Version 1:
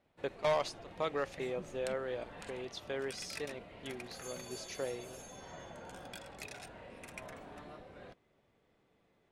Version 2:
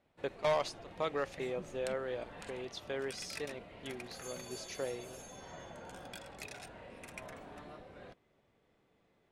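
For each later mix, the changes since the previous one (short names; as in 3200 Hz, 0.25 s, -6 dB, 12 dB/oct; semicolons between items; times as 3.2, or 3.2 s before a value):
none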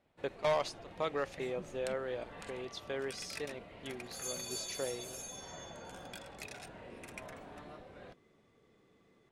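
second sound +8.5 dB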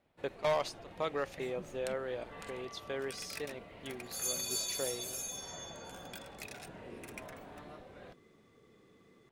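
second sound +5.0 dB; master: remove LPF 11000 Hz 12 dB/oct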